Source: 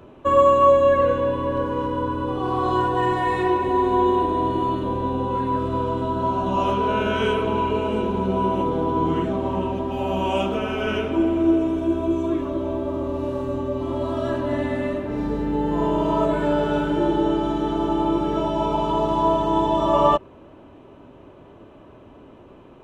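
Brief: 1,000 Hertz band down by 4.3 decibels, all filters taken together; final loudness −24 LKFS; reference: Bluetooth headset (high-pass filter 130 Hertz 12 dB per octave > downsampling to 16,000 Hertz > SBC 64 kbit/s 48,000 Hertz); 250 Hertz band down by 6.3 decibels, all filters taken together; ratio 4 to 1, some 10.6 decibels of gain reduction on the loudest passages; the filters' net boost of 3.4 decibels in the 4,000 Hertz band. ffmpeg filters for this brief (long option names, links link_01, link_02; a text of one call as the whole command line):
ffmpeg -i in.wav -af "equalizer=frequency=250:width_type=o:gain=-8.5,equalizer=frequency=1000:width_type=o:gain=-4.5,equalizer=frequency=4000:width_type=o:gain=5.5,acompressor=threshold=-27dB:ratio=4,highpass=130,aresample=16000,aresample=44100,volume=7dB" -ar 48000 -c:a sbc -b:a 64k out.sbc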